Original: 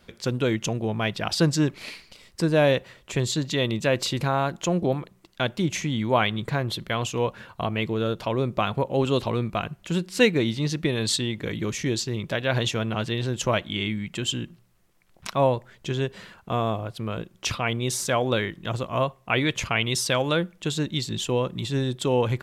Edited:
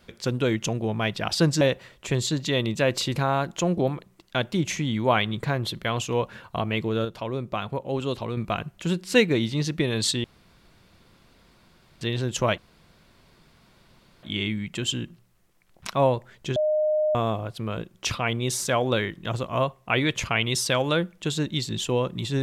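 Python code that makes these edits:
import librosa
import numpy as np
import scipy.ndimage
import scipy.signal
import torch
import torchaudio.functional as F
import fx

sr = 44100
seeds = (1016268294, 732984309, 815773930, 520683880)

y = fx.edit(x, sr, fx.cut(start_s=1.61, length_s=1.05),
    fx.clip_gain(start_s=8.1, length_s=1.32, db=-5.0),
    fx.room_tone_fill(start_s=11.29, length_s=1.77),
    fx.insert_room_tone(at_s=13.63, length_s=1.65),
    fx.bleep(start_s=15.96, length_s=0.59, hz=613.0, db=-19.5), tone=tone)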